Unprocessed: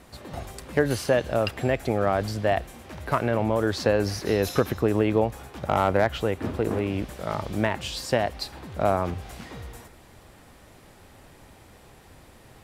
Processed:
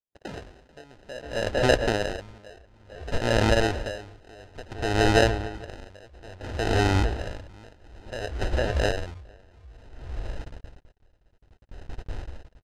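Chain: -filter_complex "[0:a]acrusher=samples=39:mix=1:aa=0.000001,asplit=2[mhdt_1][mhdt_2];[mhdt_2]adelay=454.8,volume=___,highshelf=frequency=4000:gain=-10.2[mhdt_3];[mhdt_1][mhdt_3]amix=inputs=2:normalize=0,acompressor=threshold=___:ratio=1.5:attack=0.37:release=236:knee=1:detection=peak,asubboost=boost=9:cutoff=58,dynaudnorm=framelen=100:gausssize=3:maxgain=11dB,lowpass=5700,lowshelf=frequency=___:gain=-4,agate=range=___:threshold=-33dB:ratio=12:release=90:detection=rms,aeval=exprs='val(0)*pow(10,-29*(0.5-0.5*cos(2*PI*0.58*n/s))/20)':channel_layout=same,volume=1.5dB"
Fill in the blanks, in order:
-11dB, -35dB, 260, -55dB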